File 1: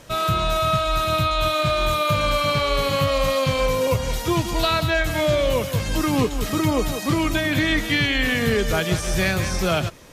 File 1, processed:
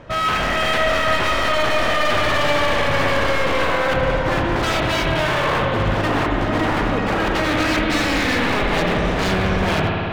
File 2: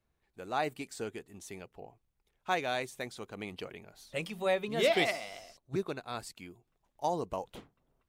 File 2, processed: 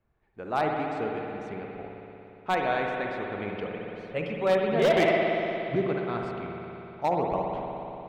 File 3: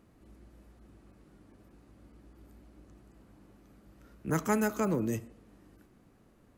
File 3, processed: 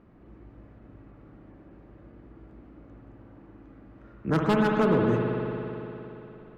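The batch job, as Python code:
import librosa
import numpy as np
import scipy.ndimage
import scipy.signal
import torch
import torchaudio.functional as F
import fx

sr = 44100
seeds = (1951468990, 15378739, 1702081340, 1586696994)

y = scipy.signal.sosfilt(scipy.signal.butter(2, 2000.0, 'lowpass', fs=sr, output='sos'), x)
y = 10.0 ** (-22.5 / 20.0) * (np.abs((y / 10.0 ** (-22.5 / 20.0) + 3.0) % 4.0 - 2.0) - 1.0)
y = fx.rev_spring(y, sr, rt60_s=3.4, pass_ms=(58,), chirp_ms=70, drr_db=0.0)
y = F.gain(torch.from_numpy(y), 5.5).numpy()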